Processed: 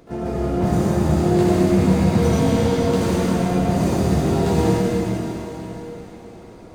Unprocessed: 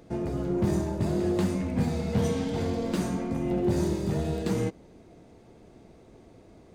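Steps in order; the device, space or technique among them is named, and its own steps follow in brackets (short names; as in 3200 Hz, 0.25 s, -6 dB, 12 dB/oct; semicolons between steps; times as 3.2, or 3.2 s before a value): shimmer-style reverb (harmoniser +12 st -12 dB; reverb RT60 4.3 s, pre-delay 65 ms, DRR -7 dB); gain +2.5 dB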